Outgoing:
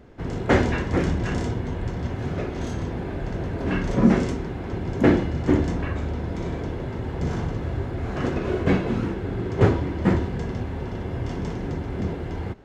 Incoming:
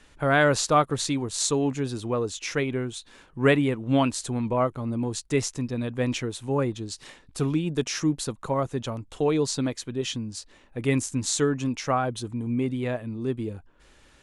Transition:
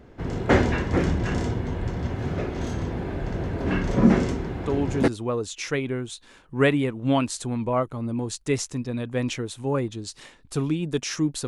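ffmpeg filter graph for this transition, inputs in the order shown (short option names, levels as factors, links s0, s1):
-filter_complex "[0:a]apad=whole_dur=11.47,atrim=end=11.47,atrim=end=5.08,asetpts=PTS-STARTPTS[s0];[1:a]atrim=start=1.5:end=8.31,asetpts=PTS-STARTPTS[s1];[s0][s1]acrossfade=d=0.42:c1=log:c2=log"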